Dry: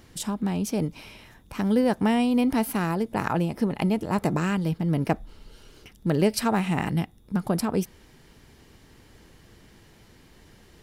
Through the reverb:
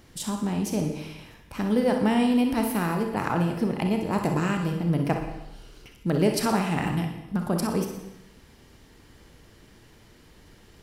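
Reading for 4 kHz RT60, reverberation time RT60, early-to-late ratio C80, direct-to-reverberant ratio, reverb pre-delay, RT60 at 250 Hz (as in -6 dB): 0.90 s, 0.95 s, 8.0 dB, 3.0 dB, 32 ms, 0.90 s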